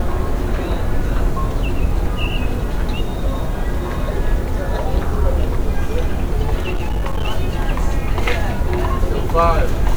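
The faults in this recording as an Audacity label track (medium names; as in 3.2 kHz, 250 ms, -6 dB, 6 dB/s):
6.600000	7.290000	clipped -15 dBFS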